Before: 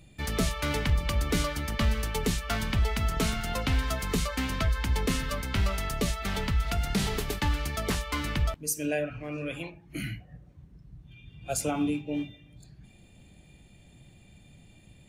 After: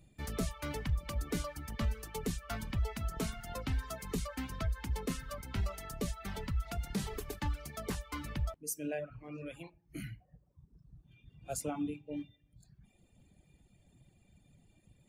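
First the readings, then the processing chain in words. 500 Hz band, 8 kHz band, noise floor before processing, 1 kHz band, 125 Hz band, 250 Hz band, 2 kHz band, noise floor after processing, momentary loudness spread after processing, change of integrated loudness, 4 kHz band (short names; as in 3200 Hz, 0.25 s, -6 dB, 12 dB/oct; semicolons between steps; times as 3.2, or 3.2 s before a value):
-8.5 dB, -9.0 dB, -56 dBFS, -10.0 dB, -8.5 dB, -8.5 dB, -13.0 dB, -70 dBFS, 9 LU, -9.5 dB, -13.5 dB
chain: reverb removal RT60 1.1 s; bell 3000 Hz -5.5 dB 1.9 oct; gain -7 dB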